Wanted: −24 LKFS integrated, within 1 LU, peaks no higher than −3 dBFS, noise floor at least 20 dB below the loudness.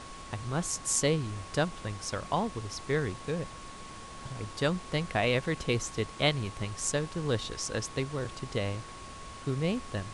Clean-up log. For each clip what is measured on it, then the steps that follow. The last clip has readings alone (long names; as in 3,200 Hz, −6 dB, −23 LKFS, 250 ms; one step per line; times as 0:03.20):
interfering tone 1,100 Hz; level of the tone −47 dBFS; background noise floor −45 dBFS; target noise floor −52 dBFS; integrated loudness −32.0 LKFS; sample peak −11.5 dBFS; target loudness −24.0 LKFS
→ notch filter 1,100 Hz, Q 30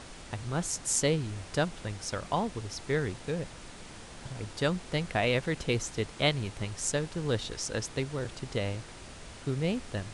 interfering tone none found; background noise floor −47 dBFS; target noise floor −52 dBFS
→ noise reduction from a noise print 6 dB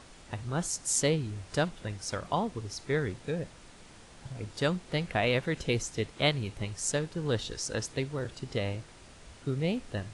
background noise floor −53 dBFS; integrated loudness −32.0 LKFS; sample peak −11.5 dBFS; target loudness −24.0 LKFS
→ level +8 dB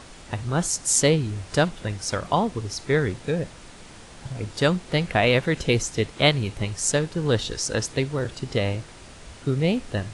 integrated loudness −24.0 LKFS; sample peak −3.5 dBFS; background noise floor −45 dBFS